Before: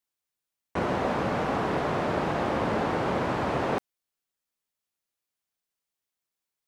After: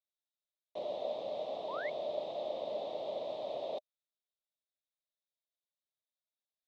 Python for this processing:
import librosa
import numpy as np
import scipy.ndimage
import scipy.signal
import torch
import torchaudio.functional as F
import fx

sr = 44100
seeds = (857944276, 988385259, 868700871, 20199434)

y = fx.double_bandpass(x, sr, hz=1500.0, octaves=2.6)
y = fx.spec_paint(y, sr, seeds[0], shape='rise', start_s=1.68, length_s=0.22, low_hz=860.0, high_hz=2300.0, level_db=-41.0)
y = F.gain(torch.from_numpy(y), -2.0).numpy()